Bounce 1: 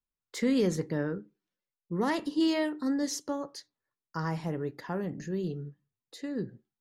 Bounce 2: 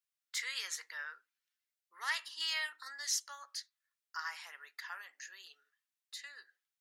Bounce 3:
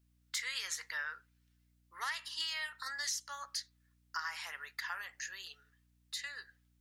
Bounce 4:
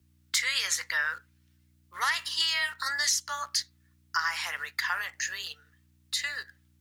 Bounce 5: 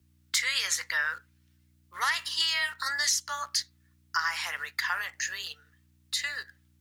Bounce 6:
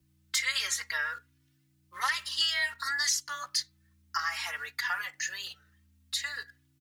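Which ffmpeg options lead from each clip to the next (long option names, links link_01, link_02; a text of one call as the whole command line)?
ffmpeg -i in.wav -af "highpass=frequency=1400:width=0.5412,highpass=frequency=1400:width=1.3066,volume=2.5dB" out.wav
ffmpeg -i in.wav -af "acompressor=threshold=-41dB:ratio=10,aeval=exprs='val(0)+0.000141*(sin(2*PI*60*n/s)+sin(2*PI*2*60*n/s)/2+sin(2*PI*3*60*n/s)/3+sin(2*PI*4*60*n/s)/4+sin(2*PI*5*60*n/s)/5)':channel_layout=same,volume=6.5dB" out.wav
ffmpeg -i in.wav -filter_complex "[0:a]afreqshift=20,asplit=2[link_01][link_02];[link_02]aeval=exprs='val(0)*gte(abs(val(0)),0.00224)':channel_layout=same,volume=-5.5dB[link_03];[link_01][link_03]amix=inputs=2:normalize=0,volume=7dB" out.wav
ffmpeg -i in.wav -af anull out.wav
ffmpeg -i in.wav -filter_complex "[0:a]asplit=2[link_01][link_02];[link_02]adelay=3.5,afreqshift=0.57[link_03];[link_01][link_03]amix=inputs=2:normalize=1,volume=1dB" out.wav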